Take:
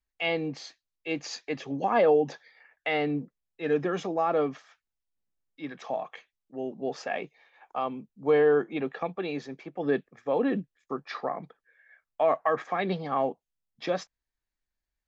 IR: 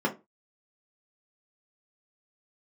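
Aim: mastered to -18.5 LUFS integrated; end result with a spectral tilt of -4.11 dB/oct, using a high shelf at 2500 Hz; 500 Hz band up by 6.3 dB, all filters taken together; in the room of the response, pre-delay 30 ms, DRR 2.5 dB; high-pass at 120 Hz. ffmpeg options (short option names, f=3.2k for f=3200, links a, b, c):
-filter_complex "[0:a]highpass=120,equalizer=f=500:t=o:g=7,highshelf=f=2.5k:g=7.5,asplit=2[a][b];[1:a]atrim=start_sample=2205,adelay=30[c];[b][c]afir=irnorm=-1:irlink=0,volume=-13dB[d];[a][d]amix=inputs=2:normalize=0,volume=1dB"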